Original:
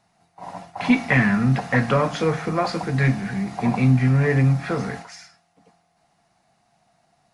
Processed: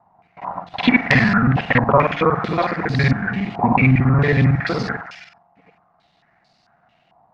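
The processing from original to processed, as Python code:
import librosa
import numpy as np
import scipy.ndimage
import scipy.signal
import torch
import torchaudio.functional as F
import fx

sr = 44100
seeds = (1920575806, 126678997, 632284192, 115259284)

y = fx.local_reverse(x, sr, ms=46.0)
y = fx.filter_held_lowpass(y, sr, hz=4.5, low_hz=950.0, high_hz=4600.0)
y = y * 10.0 ** (2.5 / 20.0)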